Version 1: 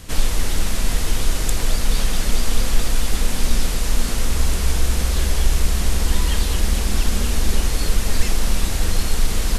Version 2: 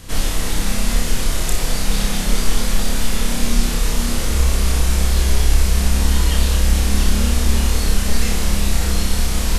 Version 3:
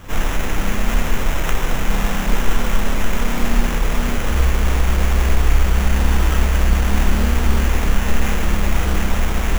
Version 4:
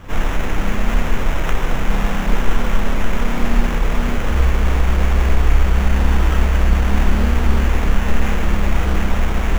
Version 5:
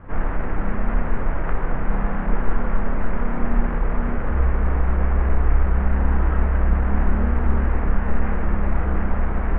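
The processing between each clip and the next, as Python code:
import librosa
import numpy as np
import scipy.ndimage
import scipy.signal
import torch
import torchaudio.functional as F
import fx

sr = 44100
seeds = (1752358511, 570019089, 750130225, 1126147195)

y1 = fx.room_flutter(x, sr, wall_m=5.1, rt60_s=0.5)
y2 = fx.sample_hold(y1, sr, seeds[0], rate_hz=4500.0, jitter_pct=0)
y3 = fx.high_shelf(y2, sr, hz=4700.0, db=-10.5)
y3 = y3 * librosa.db_to_amplitude(1.0)
y4 = scipy.signal.sosfilt(scipy.signal.butter(4, 1800.0, 'lowpass', fs=sr, output='sos'), y3)
y4 = y4 * librosa.db_to_amplitude(-4.0)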